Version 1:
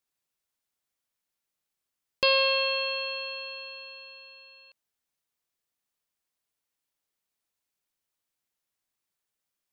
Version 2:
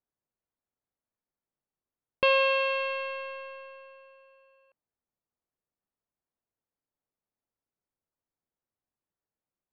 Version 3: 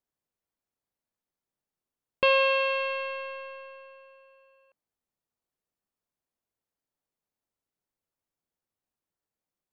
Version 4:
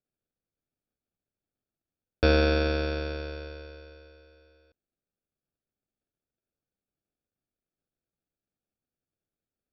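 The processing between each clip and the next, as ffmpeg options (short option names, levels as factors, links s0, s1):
-af "adynamicsmooth=sensitivity=5:basefreq=1100,lowpass=f=2800:w=0.5412,lowpass=f=2800:w=1.3066,volume=1.26"
-af "bandreject=f=60:t=h:w=6,bandreject=f=120:t=h:w=6,volume=1.12"
-af "equalizer=f=1000:w=1.4:g=6,aresample=11025,acrusher=samples=11:mix=1:aa=0.000001,aresample=44100,volume=0.841"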